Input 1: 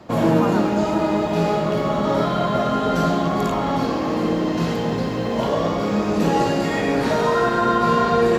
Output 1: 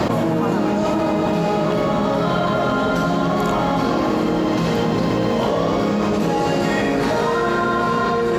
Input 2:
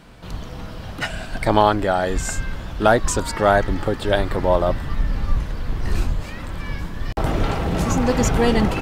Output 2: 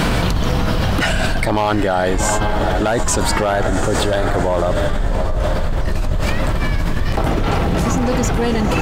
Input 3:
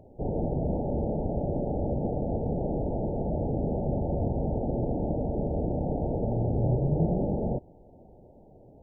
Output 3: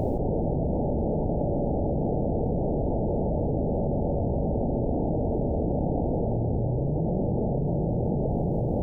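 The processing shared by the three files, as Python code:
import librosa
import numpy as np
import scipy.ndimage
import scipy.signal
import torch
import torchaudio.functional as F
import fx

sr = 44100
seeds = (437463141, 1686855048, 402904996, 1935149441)

p1 = x + fx.echo_diffused(x, sr, ms=761, feedback_pct=46, wet_db=-10, dry=0)
p2 = np.clip(10.0 ** (9.0 / 20.0) * p1, -1.0, 1.0) / 10.0 ** (9.0 / 20.0)
p3 = fx.env_flatten(p2, sr, amount_pct=100)
y = F.gain(torch.from_numpy(p3), -4.0).numpy()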